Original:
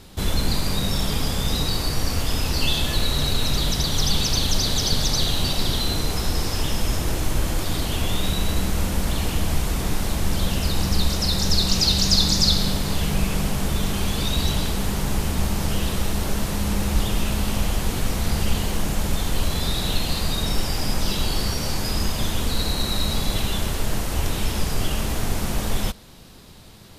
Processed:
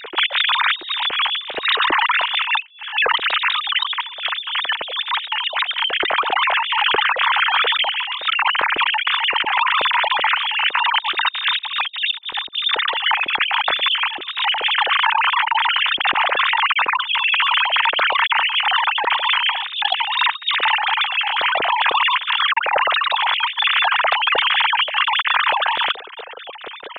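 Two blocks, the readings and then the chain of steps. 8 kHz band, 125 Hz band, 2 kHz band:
under -40 dB, under -30 dB, +16.5 dB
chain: formants replaced by sine waves; compressor with a negative ratio -25 dBFS, ratio -0.5; loudspeaker Doppler distortion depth 0.27 ms; trim +5.5 dB

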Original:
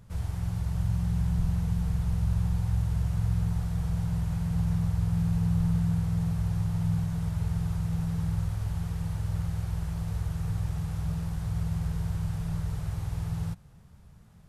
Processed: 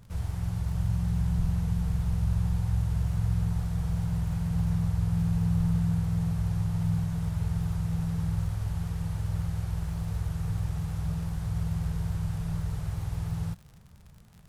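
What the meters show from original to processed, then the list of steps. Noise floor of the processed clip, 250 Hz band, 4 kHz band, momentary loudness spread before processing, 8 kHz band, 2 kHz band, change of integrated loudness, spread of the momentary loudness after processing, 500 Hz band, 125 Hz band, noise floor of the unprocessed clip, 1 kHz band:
-52 dBFS, 0.0 dB, no reading, 6 LU, 0.0 dB, 0.0 dB, 0.0 dB, 6 LU, 0.0 dB, 0.0 dB, -52 dBFS, 0.0 dB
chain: crackle 67 per s -43 dBFS

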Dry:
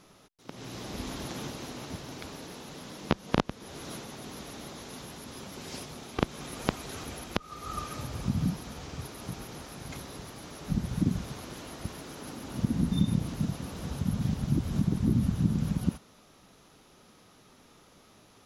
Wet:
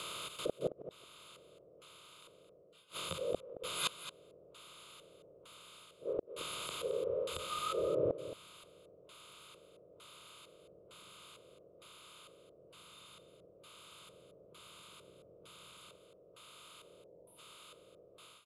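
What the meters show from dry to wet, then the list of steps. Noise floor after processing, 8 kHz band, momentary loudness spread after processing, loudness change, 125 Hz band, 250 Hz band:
-63 dBFS, -5.5 dB, 22 LU, -6.0 dB, -25.5 dB, -21.5 dB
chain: spectral levelling over time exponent 0.2; frequency shift +16 Hz; time-frequency box 16.84–17.39 s, 1–8.5 kHz -13 dB; tilt EQ +4.5 dB/octave; hum notches 50/100/150 Hz; level rider gain up to 16 dB; saturation -10.5 dBFS, distortion -15 dB; LFO low-pass square 1.1 Hz 520–7100 Hz; static phaser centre 1.2 kHz, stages 8; spectral noise reduction 13 dB; inverted gate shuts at -20 dBFS, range -35 dB; on a send: delay 221 ms -12.5 dB; on the sum: trim -1.5 dB

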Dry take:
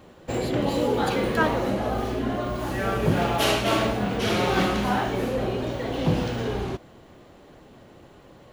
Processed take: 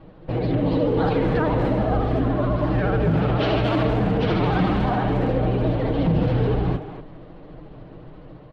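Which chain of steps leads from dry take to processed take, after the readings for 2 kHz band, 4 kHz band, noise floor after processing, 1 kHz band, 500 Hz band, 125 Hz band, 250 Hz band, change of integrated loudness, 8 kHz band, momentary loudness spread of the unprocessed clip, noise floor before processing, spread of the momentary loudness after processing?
-2.5 dB, -5.5 dB, -43 dBFS, +0.5 dB, +2.5 dB, +8.0 dB, +4.5 dB, +3.5 dB, under -20 dB, 7 LU, -50 dBFS, 4 LU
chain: steep low-pass 4.7 kHz 36 dB/octave; tilt EQ -3 dB/octave; hum notches 50/100/150/200/250/300/350/400/450 Hz; comb 6.5 ms, depth 65%; peak limiter -13.5 dBFS, peak gain reduction 10 dB; level rider gain up to 3.5 dB; vibrato 14 Hz 85 cents; speakerphone echo 240 ms, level -8 dB; trim -2.5 dB

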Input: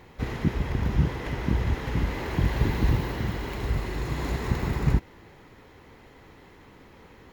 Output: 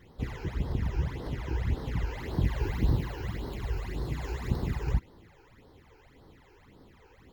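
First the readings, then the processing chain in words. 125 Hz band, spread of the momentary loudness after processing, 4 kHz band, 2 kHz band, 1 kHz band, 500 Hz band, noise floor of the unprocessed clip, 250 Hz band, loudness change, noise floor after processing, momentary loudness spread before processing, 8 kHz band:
-4.5 dB, 7 LU, -7.0 dB, -8.0 dB, -7.5 dB, -6.0 dB, -52 dBFS, -7.0 dB, -5.0 dB, -58 dBFS, 5 LU, -7.0 dB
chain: phase shifter stages 12, 1.8 Hz, lowest notch 190–2500 Hz; trim -4 dB

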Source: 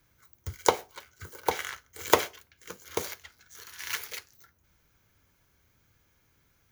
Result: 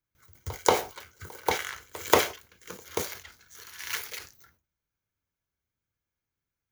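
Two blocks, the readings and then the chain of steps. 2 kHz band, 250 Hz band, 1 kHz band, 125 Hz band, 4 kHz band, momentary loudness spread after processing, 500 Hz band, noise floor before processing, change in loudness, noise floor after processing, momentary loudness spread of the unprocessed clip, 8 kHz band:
+2.0 dB, +2.0 dB, +1.5 dB, +2.0 dB, +2.0 dB, 21 LU, +1.5 dB, -69 dBFS, +2.0 dB, under -85 dBFS, 21 LU, +1.5 dB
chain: pre-echo 184 ms -22 dB; gate with hold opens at -53 dBFS; decay stretcher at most 150 dB/s

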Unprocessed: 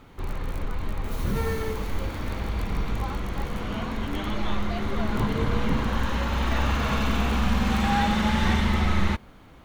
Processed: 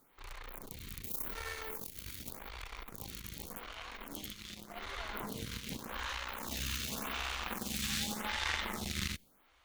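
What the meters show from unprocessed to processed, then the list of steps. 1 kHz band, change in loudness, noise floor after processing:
-15.0 dB, -12.5 dB, -68 dBFS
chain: Chebyshev shaper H 3 -14 dB, 8 -26 dB, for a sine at -9.5 dBFS; pre-emphasis filter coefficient 0.9; lamp-driven phase shifter 0.86 Hz; trim +9 dB

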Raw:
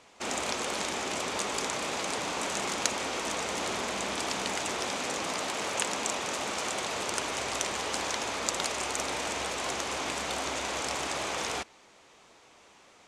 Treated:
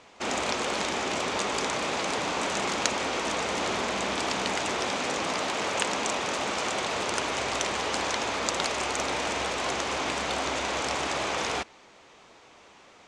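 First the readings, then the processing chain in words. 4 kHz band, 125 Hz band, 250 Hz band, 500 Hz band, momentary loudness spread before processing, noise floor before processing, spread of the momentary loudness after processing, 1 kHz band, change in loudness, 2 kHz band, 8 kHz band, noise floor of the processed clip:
+3.0 dB, +4.5 dB, +4.5 dB, +4.5 dB, 2 LU, -58 dBFS, 1 LU, +4.0 dB, +3.0 dB, +4.0 dB, -0.5 dB, -54 dBFS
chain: distance through air 61 m; trim +4.5 dB

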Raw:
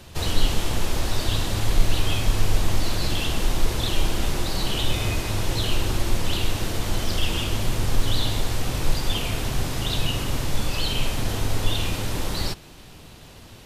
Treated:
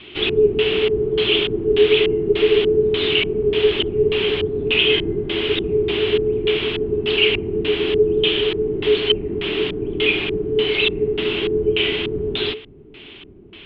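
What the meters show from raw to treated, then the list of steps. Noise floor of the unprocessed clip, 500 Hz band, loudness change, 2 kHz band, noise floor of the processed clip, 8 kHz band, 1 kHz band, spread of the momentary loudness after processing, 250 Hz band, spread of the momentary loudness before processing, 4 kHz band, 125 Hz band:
-45 dBFS, +18.0 dB, +7.5 dB, +9.5 dB, -41 dBFS, under -30 dB, -4.0 dB, 6 LU, +6.5 dB, 3 LU, +7.5 dB, -5.0 dB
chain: LFO low-pass square 1.7 Hz 570–3700 Hz; frequency shift -440 Hz; resonant high shelf 4.4 kHz -13 dB, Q 3

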